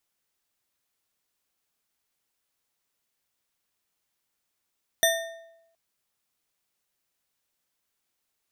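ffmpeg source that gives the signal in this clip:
ffmpeg -f lavfi -i "aevalsrc='0.0944*pow(10,-3*t/0.9)*sin(2*PI*663*t)+0.0841*pow(10,-3*t/0.664)*sin(2*PI*1827.9*t)+0.075*pow(10,-3*t/0.543)*sin(2*PI*3582.9*t)+0.0668*pow(10,-3*t/0.467)*sin(2*PI*5922.6*t)+0.0596*pow(10,-3*t/0.414)*sin(2*PI*8844.4*t)+0.0531*pow(10,-3*t/0.374)*sin(2*PI*12358.3*t)':duration=0.72:sample_rate=44100" out.wav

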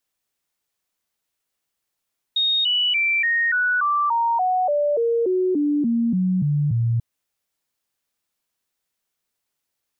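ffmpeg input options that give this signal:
ffmpeg -f lavfi -i "aevalsrc='0.141*clip(min(mod(t,0.29),0.29-mod(t,0.29))/0.005,0,1)*sin(2*PI*3720*pow(2,-floor(t/0.29)/3)*mod(t,0.29))':duration=4.64:sample_rate=44100" out.wav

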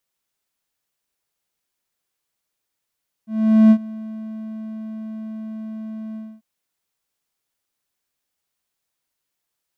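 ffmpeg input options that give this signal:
ffmpeg -f lavfi -i "aevalsrc='0.596*(1-4*abs(mod(219*t+0.25,1)-0.5))':duration=3.142:sample_rate=44100,afade=type=in:duration=0.438,afade=type=out:start_time=0.438:duration=0.068:silence=0.0794,afade=type=out:start_time=2.89:duration=0.252" out.wav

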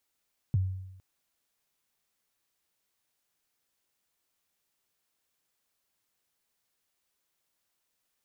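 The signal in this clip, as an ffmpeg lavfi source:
ffmpeg -f lavfi -i "aevalsrc='0.0944*pow(10,-3*t/0.91)*sin(2*PI*(150*0.023/log(94/150)*(exp(log(94/150)*min(t,0.023)/0.023)-1)+94*max(t-0.023,0)))':duration=0.46:sample_rate=44100" out.wav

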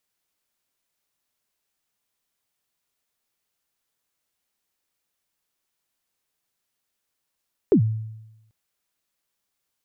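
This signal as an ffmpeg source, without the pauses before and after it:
ffmpeg -f lavfi -i "aevalsrc='0.299*pow(10,-3*t/0.96)*sin(2*PI*(460*0.091/log(110/460)*(exp(log(110/460)*min(t,0.091)/0.091)-1)+110*max(t-0.091,0)))':duration=0.79:sample_rate=44100" out.wav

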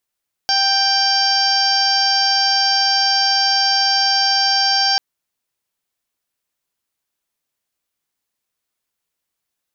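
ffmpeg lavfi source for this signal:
ffmpeg -f lavfi -i "aevalsrc='0.106*sin(2*PI*786*t)+0.0668*sin(2*PI*1572*t)+0.0237*sin(2*PI*2358*t)+0.0531*sin(2*PI*3144*t)+0.0168*sin(2*PI*3930*t)+0.141*sin(2*PI*4716*t)+0.106*sin(2*PI*5502*t)+0.0299*sin(2*PI*6288*t)':duration=4.49:sample_rate=44100" out.wav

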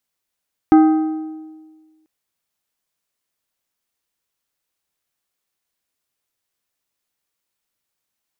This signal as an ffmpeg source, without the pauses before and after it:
ffmpeg -f lavfi -i "aevalsrc='0.562*pow(10,-3*t/1.52)*sin(2*PI*314*t)+0.2*pow(10,-3*t/1.155)*sin(2*PI*785*t)+0.0708*pow(10,-3*t/1.003)*sin(2*PI*1256*t)+0.0251*pow(10,-3*t/0.938)*sin(2*PI*1570*t)+0.00891*pow(10,-3*t/0.867)*sin(2*PI*2041*t)':duration=1.34:sample_rate=44100" out.wav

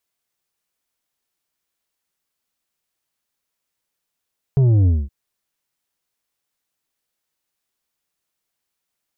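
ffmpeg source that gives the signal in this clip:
ffmpeg -f lavfi -i "aevalsrc='0.251*clip((0.52-t)/0.22,0,1)*tanh(2.24*sin(2*PI*140*0.52/log(65/140)*(exp(log(65/140)*t/0.52)-1)))/tanh(2.24)':duration=0.52:sample_rate=44100" out.wav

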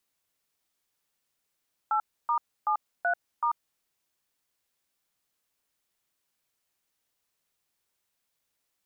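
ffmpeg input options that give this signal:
ffmpeg -f lavfi -i "aevalsrc='0.0531*clip(min(mod(t,0.379),0.09-mod(t,0.379))/0.002,0,1)*(eq(floor(t/0.379),0)*(sin(2*PI*852*mod(t,0.379))+sin(2*PI*1336*mod(t,0.379)))+eq(floor(t/0.379),1)*(sin(2*PI*941*mod(t,0.379))+sin(2*PI*1209*mod(t,0.379)))+eq(floor(t/0.379),2)*(sin(2*PI*852*mod(t,0.379))+sin(2*PI*1209*mod(t,0.379)))+eq(floor(t/0.379),3)*(sin(2*PI*697*mod(t,0.379))+sin(2*PI*1477*mod(t,0.379)))+eq(floor(t/0.379),4)*(sin(2*PI*941*mod(t,0.379))+sin(2*PI*1209*mod(t,0.379))))':duration=1.895:sample_rate=44100" out.wav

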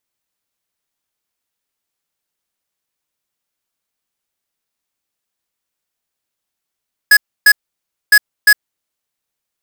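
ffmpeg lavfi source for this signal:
ffmpeg -f lavfi -i "aevalsrc='0.473*(2*lt(mod(1680*t,1),0.5)-1)*clip(min(mod(mod(t,1.01),0.35),0.06-mod(mod(t,1.01),0.35))/0.005,0,1)*lt(mod(t,1.01),0.7)':duration=2.02:sample_rate=44100" out.wav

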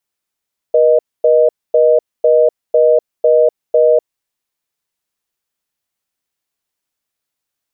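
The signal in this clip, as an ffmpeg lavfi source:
ffmpeg -f lavfi -i "aevalsrc='0.335*(sin(2*PI*480*t)+sin(2*PI*620*t))*clip(min(mod(t,0.5),0.25-mod(t,0.5))/0.005,0,1)':duration=3.48:sample_rate=44100" out.wav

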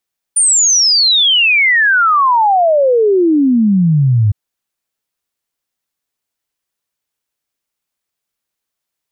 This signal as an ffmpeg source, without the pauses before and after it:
ffmpeg -f lavfi -i "aevalsrc='0.422*clip(min(t,3.96-t)/0.01,0,1)*sin(2*PI*9300*3.96/log(100/9300)*(exp(log(100/9300)*t/3.96)-1))':duration=3.96:sample_rate=44100" out.wav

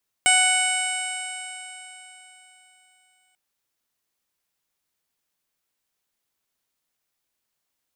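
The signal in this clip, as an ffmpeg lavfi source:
ffmpeg -f lavfi -i "aevalsrc='0.0794*pow(10,-3*t/3.66)*sin(2*PI*741.17*t)+0.0562*pow(10,-3*t/3.66)*sin(2*PI*1483.36*t)+0.106*pow(10,-3*t/3.66)*sin(2*PI*2227.6*t)+0.0891*pow(10,-3*t/3.66)*sin(2*PI*2974.89*t)+0.02*pow(10,-3*t/3.66)*sin(2*PI*3726.24*t)+0.00891*pow(10,-3*t/3.66)*sin(2*PI*4482.66*t)+0.0211*pow(10,-3*t/3.66)*sin(2*PI*5245.13*t)+0.00944*pow(10,-3*t/3.66)*sin(2*PI*6014.63*t)+0.0112*pow(10,-3*t/3.66)*sin(2*PI*6792.11*t)+0.0447*pow(10,-3*t/3.66)*sin(2*PI*7578.51*t)+0.126*pow(10,-3*t/3.66)*sin(2*PI*8374.77*t)+0.02*pow(10,-3*t/3.66)*sin(2*PI*9181.78*t)+0.0237*pow(10,-3*t/3.66)*sin(2*PI*10000.43*t)':duration=3.09:sample_rate=44100" out.wav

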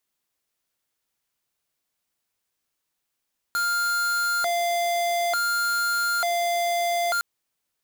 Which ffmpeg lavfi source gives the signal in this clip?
ffmpeg -f lavfi -i "aevalsrc='0.0631*(2*lt(mod((1046*t+354/0.56*(0.5-abs(mod(0.56*t,1)-0.5))),1),0.5)-1)':duration=3.66:sample_rate=44100" out.wav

